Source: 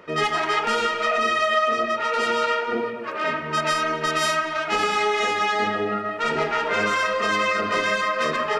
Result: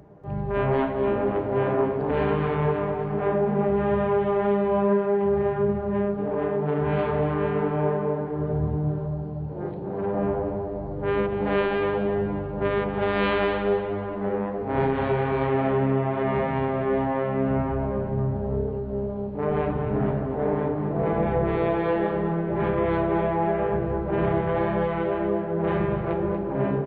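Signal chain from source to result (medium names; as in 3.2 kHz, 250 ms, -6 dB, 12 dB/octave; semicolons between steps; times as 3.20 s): treble shelf 7.8 kHz +4.5 dB; wide varispeed 0.32×; feedback delay 237 ms, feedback 32%, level -9 dB; trim -2 dB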